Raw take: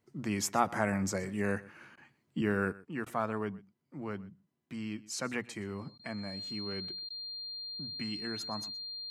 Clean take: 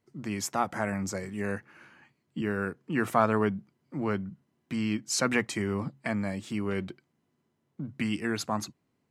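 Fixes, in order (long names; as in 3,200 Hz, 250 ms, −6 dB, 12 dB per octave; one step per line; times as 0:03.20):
notch filter 4,200 Hz, Q 30
repair the gap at 0:01.96/0:03.05/0:05.98/0:07.09, 12 ms
echo removal 123 ms −20.5 dB
level correction +9.5 dB, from 0:02.72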